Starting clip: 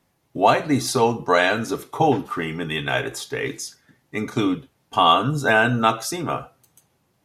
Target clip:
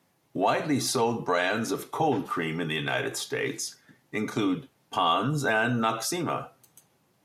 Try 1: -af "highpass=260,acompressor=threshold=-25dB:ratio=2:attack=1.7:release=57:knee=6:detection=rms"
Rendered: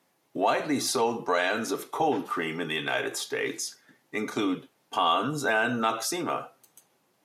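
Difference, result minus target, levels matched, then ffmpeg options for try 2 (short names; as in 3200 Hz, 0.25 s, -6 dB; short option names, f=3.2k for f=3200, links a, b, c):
125 Hz band -7.5 dB
-af "highpass=120,acompressor=threshold=-25dB:ratio=2:attack=1.7:release=57:knee=6:detection=rms"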